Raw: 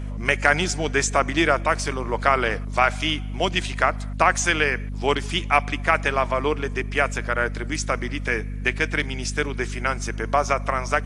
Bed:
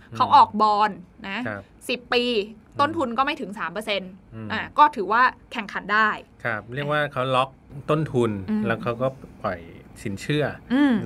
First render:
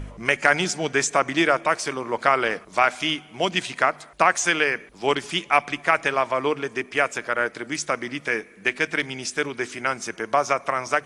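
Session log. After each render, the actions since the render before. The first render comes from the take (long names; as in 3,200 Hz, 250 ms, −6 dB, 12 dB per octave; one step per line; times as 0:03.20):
hum removal 50 Hz, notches 5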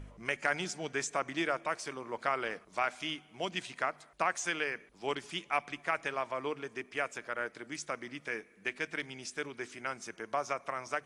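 level −13 dB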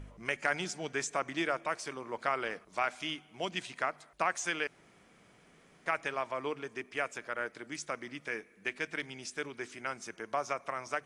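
0:04.67–0:05.86: fill with room tone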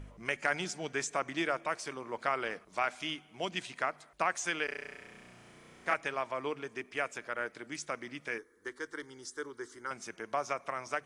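0:04.65–0:05.94: flutter between parallel walls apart 5.7 metres, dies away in 1.5 s
0:08.38–0:09.91: phaser with its sweep stopped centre 680 Hz, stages 6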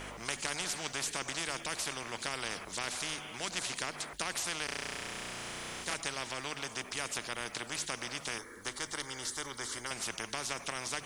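every bin compressed towards the loudest bin 4 to 1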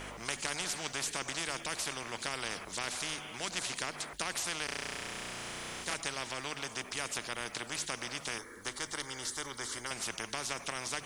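no processing that can be heard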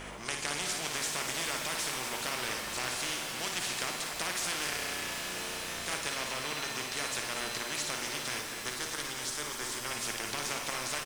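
loudspeakers that aren't time-aligned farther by 19 metres −6 dB, 84 metres −10 dB
reverb with rising layers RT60 4 s, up +7 semitones, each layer −2 dB, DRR 5.5 dB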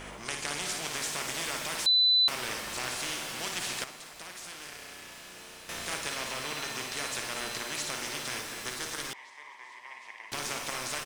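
0:01.86–0:02.28: beep over 4,000 Hz −19.5 dBFS
0:03.84–0:05.69: clip gain −10 dB
0:09.13–0:10.32: pair of resonant band-passes 1,400 Hz, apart 1 octave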